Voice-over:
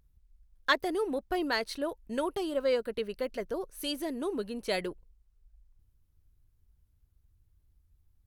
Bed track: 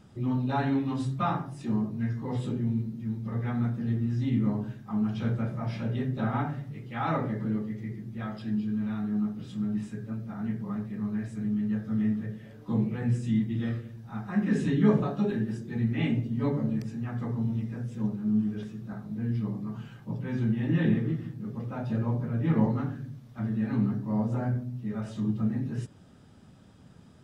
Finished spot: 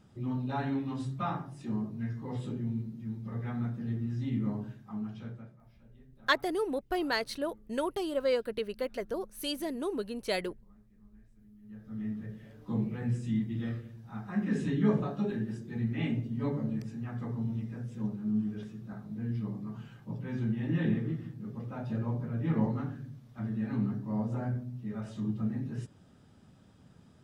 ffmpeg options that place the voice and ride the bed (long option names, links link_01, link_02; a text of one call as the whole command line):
ffmpeg -i stem1.wav -i stem2.wav -filter_complex "[0:a]adelay=5600,volume=-0.5dB[link_01];[1:a]volume=18.5dB,afade=type=out:start_time=4.63:duration=0.98:silence=0.0707946,afade=type=in:start_time=11.61:duration=0.83:silence=0.0630957[link_02];[link_01][link_02]amix=inputs=2:normalize=0" out.wav